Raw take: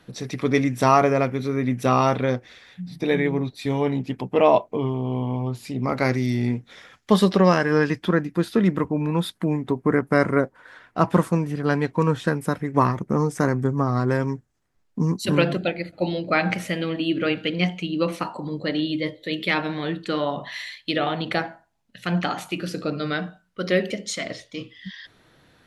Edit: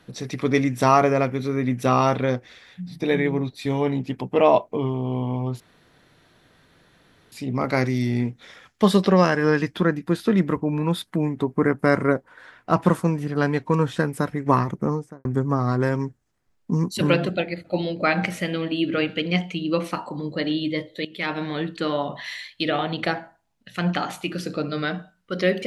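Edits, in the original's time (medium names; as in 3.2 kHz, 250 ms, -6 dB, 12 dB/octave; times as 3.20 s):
5.60 s: insert room tone 1.72 s
13.02–13.53 s: studio fade out
19.33–19.71 s: fade in, from -17.5 dB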